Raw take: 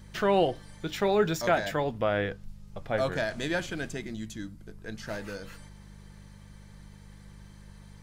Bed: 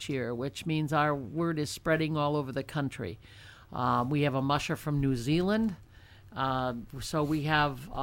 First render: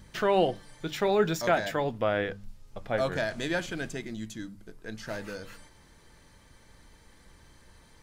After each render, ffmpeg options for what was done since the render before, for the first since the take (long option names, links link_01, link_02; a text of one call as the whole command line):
ffmpeg -i in.wav -af "bandreject=frequency=50:width_type=h:width=4,bandreject=frequency=100:width_type=h:width=4,bandreject=frequency=150:width_type=h:width=4,bandreject=frequency=200:width_type=h:width=4" out.wav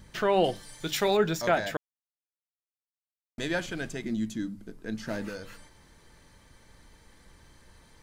ffmpeg -i in.wav -filter_complex "[0:a]asettb=1/sr,asplit=3[link_01][link_02][link_03];[link_01]atrim=end=0.444[link_04];[link_02]atrim=start=0.44:end=1.17,asetpts=PTS-STARTPTS,afade=type=in:duration=0.004:curve=qsin,afade=type=out:start_time=0.726:duration=0.004:curve=qsin,highshelf=frequency=3300:gain=12[link_05];[link_03]atrim=start=1.166[link_06];[link_04][link_05]acrossfade=duration=0.004:curve1=hsin:curve2=qsin[link_07];[link_07][link_06]acrossfade=duration=0.004:curve1=qsin:curve2=hsin,asettb=1/sr,asplit=3[link_08][link_09][link_10];[link_08]atrim=end=4.044[link_11];[link_09]atrim=start=4.04:end=5.29,asetpts=PTS-STARTPTS,afade=type=in:duration=0.004:curve=qsin,afade=type=out:start_time=1.246:duration=0.004:curve=qsin,equalizer=frequency=240:width_type=o:width=1.1:gain=9[link_12];[link_10]atrim=start=5.286[link_13];[link_11][link_12]acrossfade=duration=0.004:curve1=hsin:curve2=qsin[link_14];[link_14][link_13]acrossfade=duration=0.004:curve1=qsin:curve2=hsin,asplit=3[link_15][link_16][link_17];[link_15]atrim=end=1.77,asetpts=PTS-STARTPTS,afade=type=out:start_time=1.766:duration=0.004:curve=hsin[link_18];[link_16]atrim=start=1.77:end=3.38,asetpts=PTS-STARTPTS,volume=0[link_19];[link_17]atrim=start=3.38,asetpts=PTS-STARTPTS,afade=type=in:duration=0.004:curve=hsin[link_20];[link_18][link_19][link_20]concat=n=3:v=0:a=1" out.wav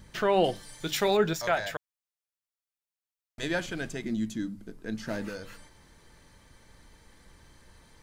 ffmpeg -i in.wav -filter_complex "[0:a]asettb=1/sr,asplit=3[link_01][link_02][link_03];[link_01]atrim=end=1.334[link_04];[link_02]atrim=start=1.33:end=3.43,asetpts=PTS-STARTPTS,afade=type=in:duration=0.004:curve=qsin,afade=type=out:start_time=2.096:duration=0.004:curve=qsin,equalizer=frequency=260:width_type=o:width=1.3:gain=-12.5[link_05];[link_03]atrim=start=3.426[link_06];[link_04][link_05]acrossfade=duration=0.004:curve1=hsin:curve2=qsin[link_07];[link_07][link_06]acrossfade=duration=0.004:curve1=qsin:curve2=hsin" out.wav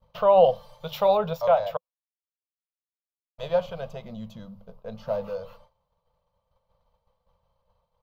ffmpeg -i in.wav -af "agate=range=-33dB:threshold=-43dB:ratio=3:detection=peak,firequalizer=gain_entry='entry(180,0);entry(310,-28);entry(510,12);entry(790,6);entry(1100,8);entry(1700,-17);entry(2800,-3);entry(4500,-8);entry(8600,-26);entry(13000,-4)':delay=0.05:min_phase=1" out.wav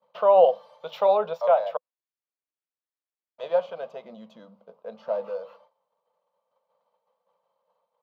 ffmpeg -i in.wav -af "highpass=frequency=270:width=0.5412,highpass=frequency=270:width=1.3066,aemphasis=mode=reproduction:type=75fm" out.wav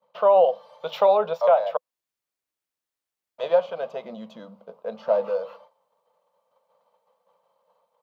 ffmpeg -i in.wav -af "dynaudnorm=framelen=160:gausssize=3:maxgain=6.5dB,alimiter=limit=-8.5dB:level=0:latency=1:release=462" out.wav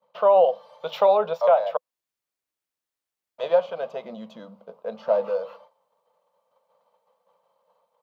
ffmpeg -i in.wav -af anull out.wav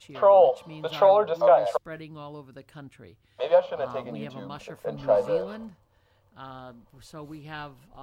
ffmpeg -i in.wav -i bed.wav -filter_complex "[1:a]volume=-12dB[link_01];[0:a][link_01]amix=inputs=2:normalize=0" out.wav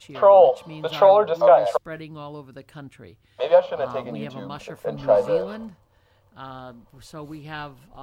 ffmpeg -i in.wav -af "volume=4dB" out.wav